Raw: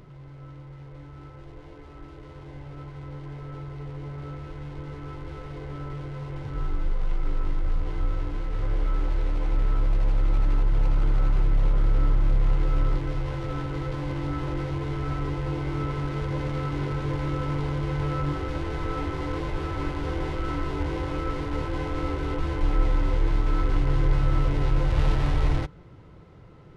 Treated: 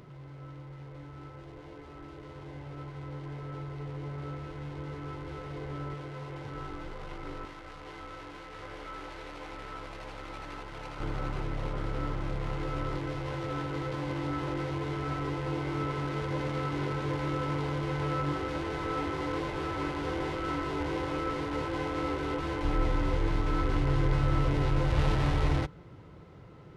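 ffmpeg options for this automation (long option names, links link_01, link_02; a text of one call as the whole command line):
ffmpeg -i in.wav -af "asetnsamples=nb_out_samples=441:pad=0,asendcmd='5.94 highpass f 290;7.45 highpass f 890;11 highpass f 220;22.65 highpass f 75',highpass=frequency=120:poles=1" out.wav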